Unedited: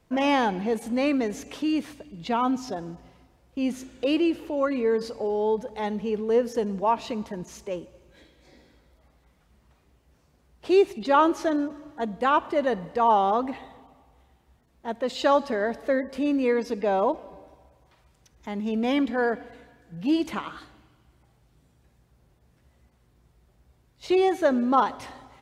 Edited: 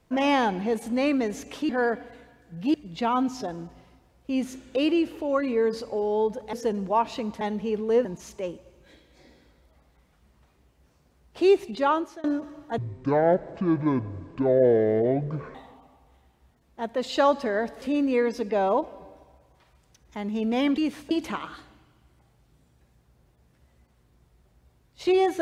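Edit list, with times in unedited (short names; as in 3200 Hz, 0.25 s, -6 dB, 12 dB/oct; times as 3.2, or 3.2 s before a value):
1.69–2.02 swap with 19.09–20.14
5.81–6.45 move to 7.33
10.97–11.52 fade out, to -24 dB
12.06–13.61 speed 56%
15.88–16.13 cut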